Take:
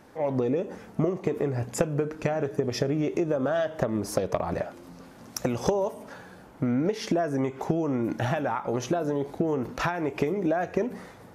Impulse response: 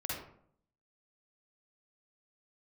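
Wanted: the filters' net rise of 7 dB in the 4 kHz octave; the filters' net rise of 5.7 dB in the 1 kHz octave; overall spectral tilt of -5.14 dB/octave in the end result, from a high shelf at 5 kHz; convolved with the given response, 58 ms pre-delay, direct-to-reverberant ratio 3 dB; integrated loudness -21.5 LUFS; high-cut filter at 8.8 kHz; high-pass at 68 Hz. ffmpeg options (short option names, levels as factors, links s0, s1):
-filter_complex "[0:a]highpass=68,lowpass=8800,equalizer=f=1000:t=o:g=7.5,equalizer=f=4000:t=o:g=8,highshelf=f=5000:g=3,asplit=2[s0][s1];[1:a]atrim=start_sample=2205,adelay=58[s2];[s1][s2]afir=irnorm=-1:irlink=0,volume=0.531[s3];[s0][s3]amix=inputs=2:normalize=0,volume=1.41"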